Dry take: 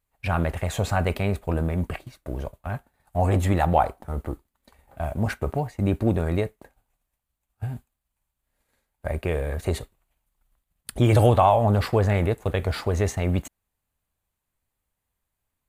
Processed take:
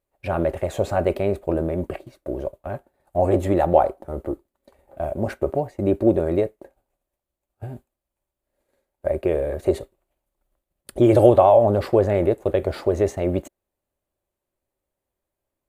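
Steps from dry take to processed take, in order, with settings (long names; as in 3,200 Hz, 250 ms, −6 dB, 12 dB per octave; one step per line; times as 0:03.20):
hollow resonant body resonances 370/550 Hz, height 16 dB, ringing for 30 ms
level −5.5 dB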